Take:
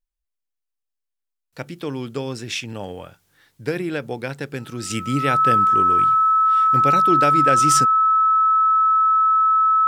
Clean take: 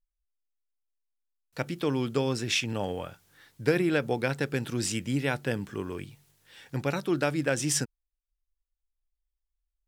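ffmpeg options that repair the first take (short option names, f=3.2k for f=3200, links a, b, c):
-af "bandreject=f=1.3k:w=30,asetnsamples=n=441:p=0,asendcmd='4.9 volume volume -6dB',volume=0dB"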